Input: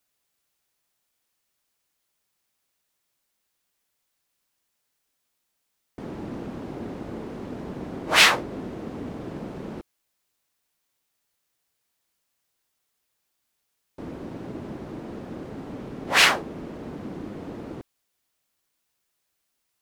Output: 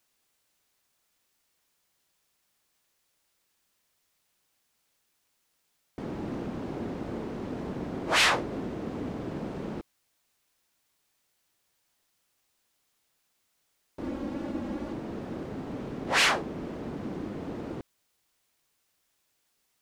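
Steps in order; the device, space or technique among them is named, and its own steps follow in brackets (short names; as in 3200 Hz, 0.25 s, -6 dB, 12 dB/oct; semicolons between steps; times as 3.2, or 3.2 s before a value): 14.03–14.93 comb 3.6 ms, depth 77%; compact cassette (soft clip -18.5 dBFS, distortion -7 dB; LPF 9300 Hz 12 dB/oct; wow and flutter; white noise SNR 40 dB)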